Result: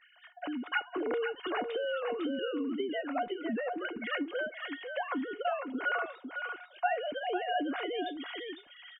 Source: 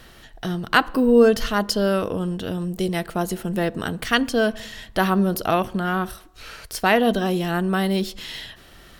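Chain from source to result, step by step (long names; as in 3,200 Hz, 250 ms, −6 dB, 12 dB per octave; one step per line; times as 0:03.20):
three sine waves on the formant tracks
parametric band 290 Hz +3 dB 0.23 octaves
downward compressor 6 to 1, threshold −26 dBFS, peak gain reduction 19 dB
tuned comb filter 720 Hz, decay 0.18 s, harmonics all, mix 80%
single-tap delay 503 ms −7 dB
0:01.13–0:03.61: multiband upward and downward compressor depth 100%
level +6.5 dB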